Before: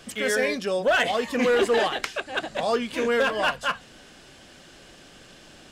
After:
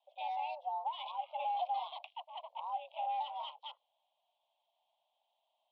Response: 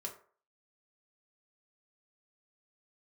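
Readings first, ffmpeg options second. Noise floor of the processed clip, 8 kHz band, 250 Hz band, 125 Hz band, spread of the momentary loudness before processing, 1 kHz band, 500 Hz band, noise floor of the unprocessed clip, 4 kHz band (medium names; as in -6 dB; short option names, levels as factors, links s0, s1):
-83 dBFS, under -40 dB, under -40 dB, under -40 dB, 8 LU, -6.5 dB, -26.0 dB, -50 dBFS, -17.5 dB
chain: -af "afwtdn=0.0178,highpass=f=370:t=q:w=0.5412,highpass=f=370:t=q:w=1.307,lowpass=f=2800:t=q:w=0.5176,lowpass=f=2800:t=q:w=0.7071,lowpass=f=2800:t=q:w=1.932,afreqshift=330,acompressor=threshold=0.0794:ratio=6,asuperstop=centerf=1700:order=4:qfactor=0.55,equalizer=f=1400:t=o:w=0.65:g=-10.5,volume=0.668"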